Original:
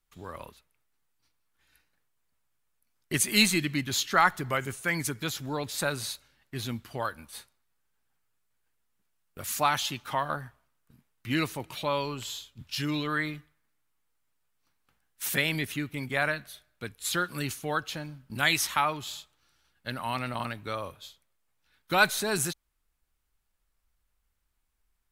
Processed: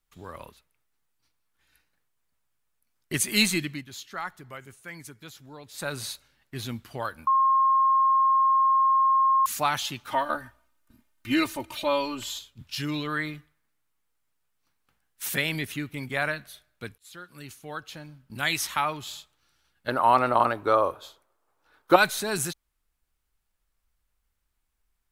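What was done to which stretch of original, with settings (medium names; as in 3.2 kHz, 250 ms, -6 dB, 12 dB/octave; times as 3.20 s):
3.57–5.98 s: dip -12.5 dB, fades 0.29 s
7.27–9.46 s: bleep 1.07 kHz -17.5 dBFS
10.12–12.39 s: comb 3.3 ms, depth 96%
16.98–18.88 s: fade in, from -23 dB
19.88–21.96 s: high-order bell 650 Hz +14 dB 2.6 oct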